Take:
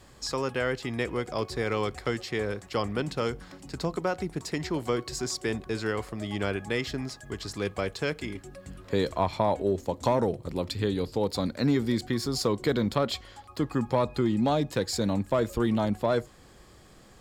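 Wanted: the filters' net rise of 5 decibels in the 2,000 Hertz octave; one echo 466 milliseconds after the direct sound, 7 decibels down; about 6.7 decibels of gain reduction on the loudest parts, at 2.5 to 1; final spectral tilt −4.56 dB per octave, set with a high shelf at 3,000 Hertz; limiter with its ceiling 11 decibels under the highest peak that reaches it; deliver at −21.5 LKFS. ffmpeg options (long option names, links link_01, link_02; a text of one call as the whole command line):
ffmpeg -i in.wav -af "equalizer=frequency=2000:width_type=o:gain=9,highshelf=frequency=3000:gain=-8,acompressor=threshold=-30dB:ratio=2.5,alimiter=level_in=2.5dB:limit=-24dB:level=0:latency=1,volume=-2.5dB,aecho=1:1:466:0.447,volume=15.5dB" out.wav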